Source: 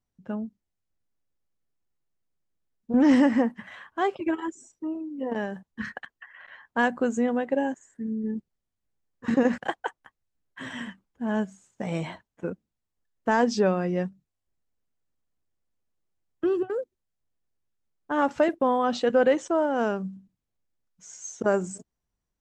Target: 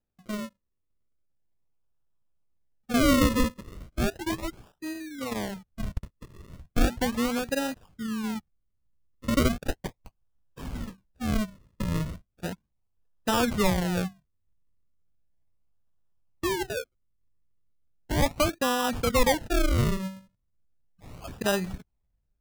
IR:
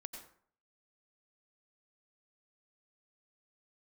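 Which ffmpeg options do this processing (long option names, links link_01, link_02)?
-af "acrusher=samples=39:mix=1:aa=0.000001:lfo=1:lforange=39:lforate=0.36,asubboost=boost=3.5:cutoff=150,volume=-2dB"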